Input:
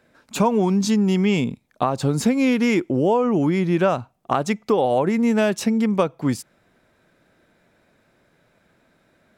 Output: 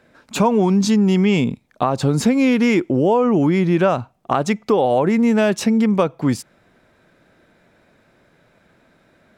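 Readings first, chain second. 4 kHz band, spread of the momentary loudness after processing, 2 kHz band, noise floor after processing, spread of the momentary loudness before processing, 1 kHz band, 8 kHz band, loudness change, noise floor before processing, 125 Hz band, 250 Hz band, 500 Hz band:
+2.5 dB, 7 LU, +2.5 dB, -58 dBFS, 7 LU, +2.5 dB, +2.0 dB, +3.0 dB, -63 dBFS, +3.5 dB, +3.5 dB, +3.0 dB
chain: treble shelf 7.3 kHz -6 dB; in parallel at -2 dB: peak limiter -17 dBFS, peak gain reduction 10.5 dB

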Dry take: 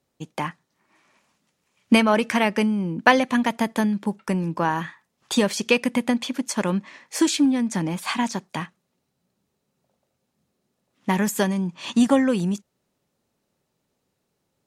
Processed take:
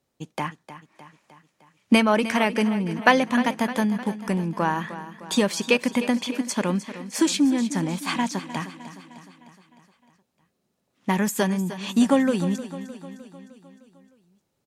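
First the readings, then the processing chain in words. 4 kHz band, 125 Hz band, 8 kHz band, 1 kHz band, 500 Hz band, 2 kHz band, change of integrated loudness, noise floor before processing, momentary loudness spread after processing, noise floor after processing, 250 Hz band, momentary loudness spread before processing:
-0.5 dB, -0.5 dB, -0.5 dB, -0.5 dB, -0.5 dB, -0.5 dB, -1.0 dB, -76 dBFS, 16 LU, -75 dBFS, -1.0 dB, 13 LU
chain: feedback delay 306 ms, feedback 57%, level -13.5 dB; trim -1 dB

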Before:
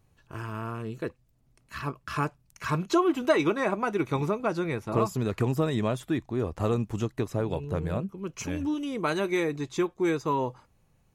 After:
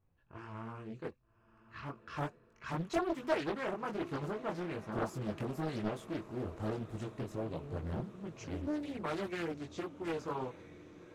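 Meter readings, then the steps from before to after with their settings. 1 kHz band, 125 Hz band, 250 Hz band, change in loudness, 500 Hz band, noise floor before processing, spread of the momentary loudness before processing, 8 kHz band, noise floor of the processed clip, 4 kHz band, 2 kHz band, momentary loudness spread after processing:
-10.0 dB, -11.0 dB, -10.5 dB, -10.5 dB, -10.5 dB, -66 dBFS, 12 LU, -13.0 dB, -69 dBFS, -10.0 dB, -10.0 dB, 12 LU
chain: level-controlled noise filter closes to 2.1 kHz, open at -26.5 dBFS; chorus voices 4, 1.3 Hz, delay 21 ms, depth 3 ms; on a send: echo that smears into a reverb 1190 ms, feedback 61%, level -16 dB; on the sum: loudspeaker Doppler distortion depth 0.91 ms; trim -7.5 dB

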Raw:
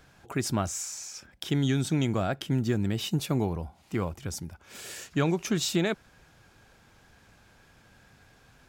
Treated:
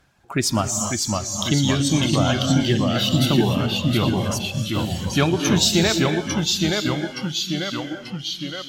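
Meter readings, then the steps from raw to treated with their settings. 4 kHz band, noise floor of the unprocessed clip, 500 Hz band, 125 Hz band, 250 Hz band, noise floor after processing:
+15.5 dB, -60 dBFS, +9.0 dB, +9.0 dB, +9.5 dB, -37 dBFS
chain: reverb removal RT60 1.3 s; dynamic bell 4.4 kHz, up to +6 dB, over -50 dBFS, Q 0.93; on a send: feedback echo behind a high-pass 116 ms, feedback 56%, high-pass 3.3 kHz, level -10.5 dB; on the sum: gated-style reverb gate 320 ms rising, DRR 5 dB; ever faster or slower copies 525 ms, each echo -1 st, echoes 3; Chebyshev shaper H 4 -27 dB, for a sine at -12 dBFS; spectral noise reduction 10 dB; band-stop 460 Hz, Q 12; trim +7.5 dB

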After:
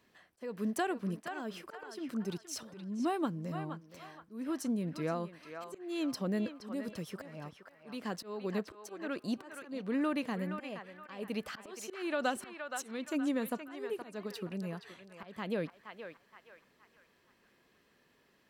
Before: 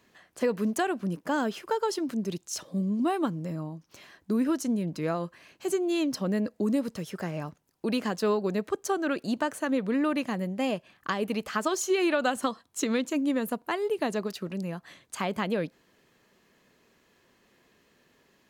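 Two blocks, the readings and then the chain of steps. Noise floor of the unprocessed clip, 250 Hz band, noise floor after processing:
-67 dBFS, -8.0 dB, -70 dBFS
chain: band-stop 6.7 kHz, Q 9.1; slow attack 328 ms; on a send: band-passed feedback delay 471 ms, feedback 43%, band-pass 1.5 kHz, level -5 dB; on the sum: trim -5.5 dB

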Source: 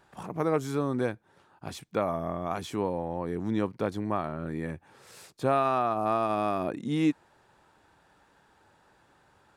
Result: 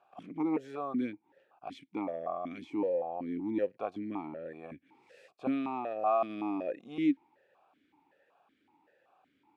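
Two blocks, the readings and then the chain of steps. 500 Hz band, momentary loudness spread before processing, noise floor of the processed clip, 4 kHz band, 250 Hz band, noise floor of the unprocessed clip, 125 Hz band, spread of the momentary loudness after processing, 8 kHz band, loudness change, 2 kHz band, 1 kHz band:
-5.0 dB, 12 LU, -74 dBFS, -10.5 dB, -2.5 dB, -64 dBFS, -16.5 dB, 15 LU, under -20 dB, -4.5 dB, -8.5 dB, -6.5 dB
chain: stepped vowel filter 5.3 Hz; trim +5.5 dB

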